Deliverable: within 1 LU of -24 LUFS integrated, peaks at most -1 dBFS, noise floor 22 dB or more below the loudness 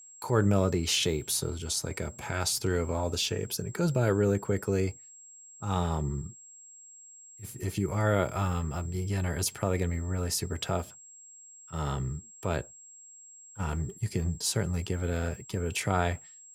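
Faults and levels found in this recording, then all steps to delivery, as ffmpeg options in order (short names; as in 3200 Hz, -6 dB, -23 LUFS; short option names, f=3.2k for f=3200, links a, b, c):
steady tone 7600 Hz; tone level -49 dBFS; loudness -30.5 LUFS; peak -11.0 dBFS; loudness target -24.0 LUFS
-> -af "bandreject=f=7.6k:w=30"
-af "volume=6.5dB"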